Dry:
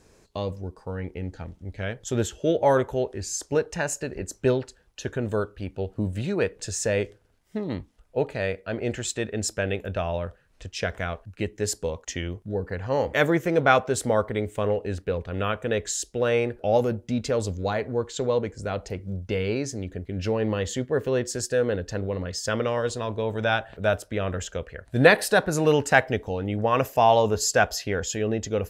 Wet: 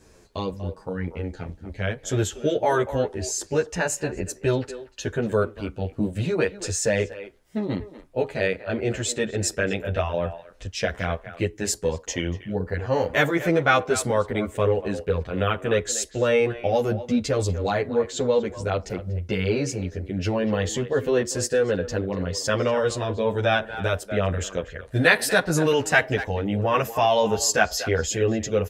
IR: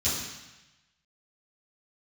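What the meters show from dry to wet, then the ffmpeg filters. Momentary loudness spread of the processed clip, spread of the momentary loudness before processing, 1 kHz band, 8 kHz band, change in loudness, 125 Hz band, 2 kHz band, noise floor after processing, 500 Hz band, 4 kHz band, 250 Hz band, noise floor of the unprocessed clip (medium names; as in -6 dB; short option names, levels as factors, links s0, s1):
10 LU, 13 LU, 0.0 dB, +3.0 dB, +1.5 dB, +2.0 dB, +2.5 dB, -50 dBFS, +1.0 dB, +3.0 dB, +2.0 dB, -60 dBFS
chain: -filter_complex "[0:a]acrossover=split=1200[s0][s1];[s0]alimiter=limit=0.141:level=0:latency=1:release=168[s2];[s2][s1]amix=inputs=2:normalize=0,asplit=2[s3][s4];[s4]adelay=240,highpass=300,lowpass=3400,asoftclip=type=hard:threshold=0.251,volume=0.224[s5];[s3][s5]amix=inputs=2:normalize=0,asplit=2[s6][s7];[s7]adelay=10.3,afreqshift=-2.5[s8];[s6][s8]amix=inputs=2:normalize=1,volume=2"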